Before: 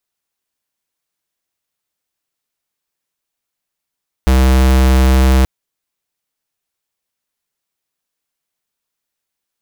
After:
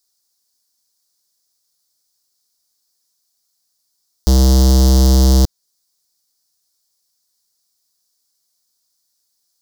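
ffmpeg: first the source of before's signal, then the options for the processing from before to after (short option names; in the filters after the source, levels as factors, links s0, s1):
-f lavfi -i "aevalsrc='0.335*(2*lt(mod(65.1*t,1),0.5)-1)':d=1.18:s=44100"
-filter_complex "[0:a]highshelf=f=3600:t=q:w=3:g=10.5,acrossover=split=400|4900[s0][s1][s2];[s1]volume=8.41,asoftclip=hard,volume=0.119[s3];[s2]alimiter=limit=0.398:level=0:latency=1:release=243[s4];[s0][s3][s4]amix=inputs=3:normalize=0"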